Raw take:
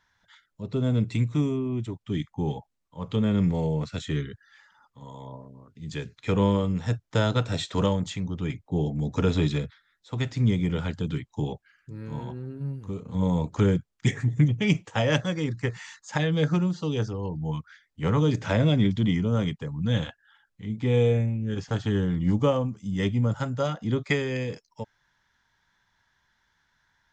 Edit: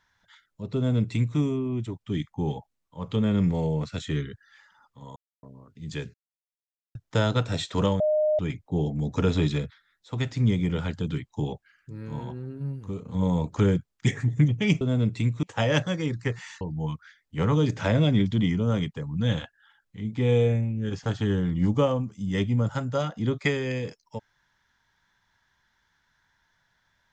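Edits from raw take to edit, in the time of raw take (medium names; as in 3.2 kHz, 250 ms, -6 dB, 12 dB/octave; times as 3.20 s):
0.76–1.38 s: copy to 14.81 s
5.16–5.43 s: mute
6.14–6.95 s: mute
8.00–8.39 s: bleep 612 Hz -19.5 dBFS
15.99–17.26 s: delete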